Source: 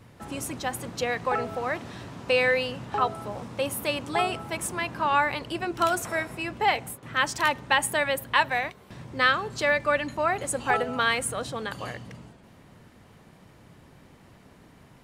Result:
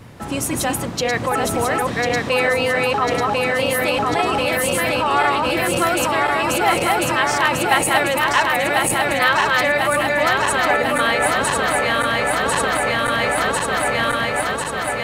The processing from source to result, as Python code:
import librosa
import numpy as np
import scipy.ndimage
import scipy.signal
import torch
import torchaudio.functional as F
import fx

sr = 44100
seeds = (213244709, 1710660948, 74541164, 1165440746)

p1 = fx.reverse_delay_fb(x, sr, ms=523, feedback_pct=82, wet_db=-2)
p2 = fx.over_compress(p1, sr, threshold_db=-29.0, ratio=-0.5)
p3 = p1 + (p2 * 10.0 ** (-2.5 / 20.0))
y = p3 * 10.0 ** (3.0 / 20.0)